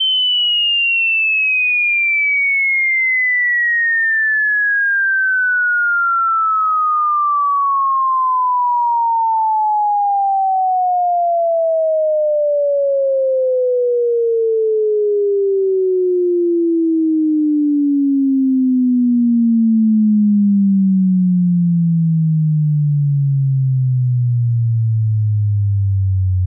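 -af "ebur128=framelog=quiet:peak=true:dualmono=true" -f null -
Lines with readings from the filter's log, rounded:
Integrated loudness:
  I:         -11.3 LUFS
  Threshold: -21.3 LUFS
Loudness range:
  LRA:         3.2 LU
  Threshold: -31.4 LUFS
  LRA low:   -12.6 LUFS
  LRA high:   -9.4 LUFS
True peak:
  Peak:       -9.0 dBFS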